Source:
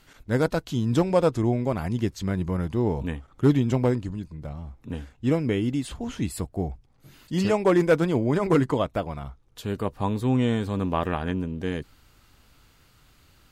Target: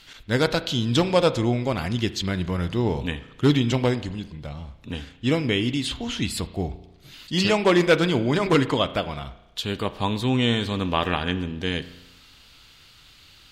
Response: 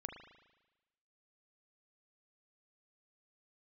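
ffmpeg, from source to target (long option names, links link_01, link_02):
-filter_complex "[0:a]equalizer=frequency=3600:width_type=o:width=1.7:gain=14.5,asplit=2[link_01][link_02];[1:a]atrim=start_sample=2205,asetrate=48510,aresample=44100[link_03];[link_02][link_03]afir=irnorm=-1:irlink=0,volume=-1.5dB[link_04];[link_01][link_04]amix=inputs=2:normalize=0,volume=-3dB"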